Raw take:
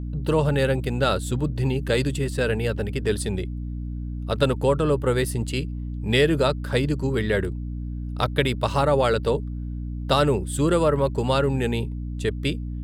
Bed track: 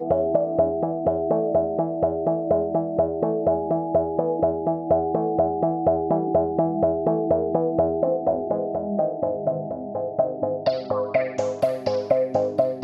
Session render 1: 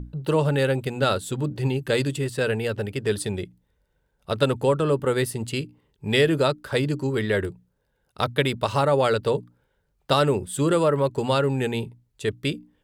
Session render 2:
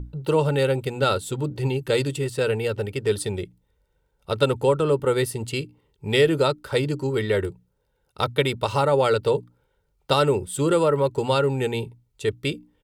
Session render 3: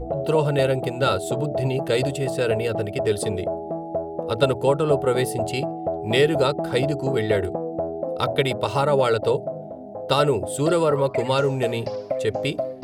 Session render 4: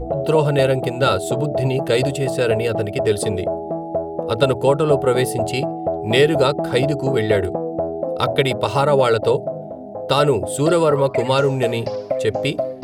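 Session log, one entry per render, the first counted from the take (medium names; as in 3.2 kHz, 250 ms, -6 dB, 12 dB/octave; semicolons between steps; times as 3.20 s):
hum notches 60/120/180/240/300 Hz
band-stop 1.7 kHz, Q 9; comb 2.2 ms, depth 32%
add bed track -6 dB
trim +4 dB; peak limiter -3 dBFS, peak gain reduction 2 dB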